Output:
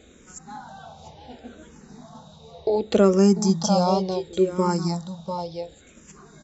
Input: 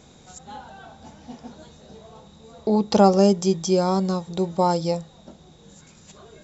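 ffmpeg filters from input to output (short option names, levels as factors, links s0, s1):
-filter_complex "[0:a]asettb=1/sr,asplit=3[s0][s1][s2];[s0]atrim=end=4.204[s3];[s1]atrim=start=4.2:end=4.69,asetpts=PTS-STARTPTS,afade=t=in:d=0.004:c=qsin,afade=t=out:st=0.486:d=0.004:c=qsin,asuperstop=centerf=730:order=4:qfactor=3.1[s4];[s2]atrim=start=4.686[s5];[s3][s4]acrossfade=d=0.004:c1=hsin:c2=qsin[s6];[s6][s5]acrossfade=d=0.004:c1=qsin:c2=hsin,aecho=1:1:694:0.335,asplit=2[s7][s8];[s8]afreqshift=-0.69[s9];[s7][s9]amix=inputs=2:normalize=1,volume=1.33"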